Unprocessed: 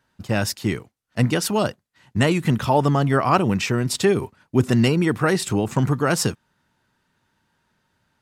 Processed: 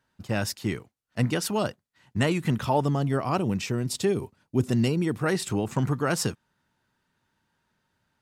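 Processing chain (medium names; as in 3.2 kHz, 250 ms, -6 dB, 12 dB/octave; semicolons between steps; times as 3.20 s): 2.81–5.26 s: peaking EQ 1.5 kHz -6.5 dB 1.9 oct; trim -5.5 dB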